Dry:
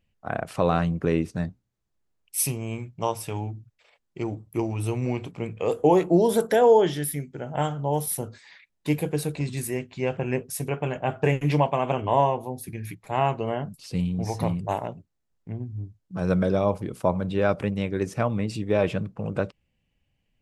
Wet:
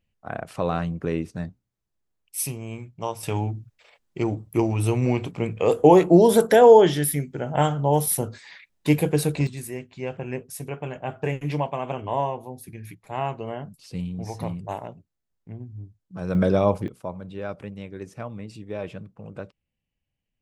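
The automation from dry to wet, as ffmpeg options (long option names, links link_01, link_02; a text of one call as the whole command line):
ffmpeg -i in.wav -af "asetnsamples=nb_out_samples=441:pad=0,asendcmd='3.23 volume volume 5dB;9.47 volume volume -4.5dB;16.35 volume volume 3dB;16.88 volume volume -10dB',volume=-3dB" out.wav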